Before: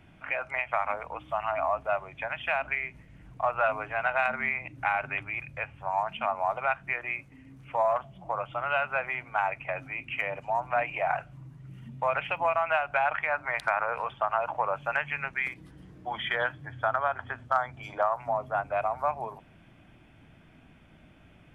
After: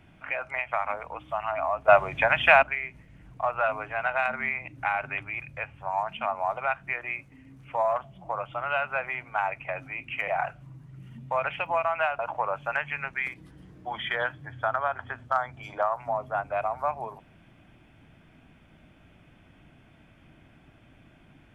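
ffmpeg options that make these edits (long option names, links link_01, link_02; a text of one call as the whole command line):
ffmpeg -i in.wav -filter_complex "[0:a]asplit=5[link_01][link_02][link_03][link_04][link_05];[link_01]atrim=end=1.882[link_06];[link_02]atrim=start=1.878:end=2.632,asetpts=PTS-STARTPTS,volume=11.5dB[link_07];[link_03]atrim=start=2.628:end=10.282[link_08];[link_04]atrim=start=10.988:end=12.902[link_09];[link_05]atrim=start=14.388[link_10];[link_06][link_07]acrossfade=duration=0.004:curve1=hsin:curve2=hsin[link_11];[link_11][link_08]acrossfade=duration=0.004:curve1=hsin:curve2=hsin[link_12];[link_12][link_09]acrossfade=duration=0.004:curve1=hsin:curve2=hsin[link_13];[link_13][link_10]acrossfade=duration=0.004:curve1=hsin:curve2=hsin" out.wav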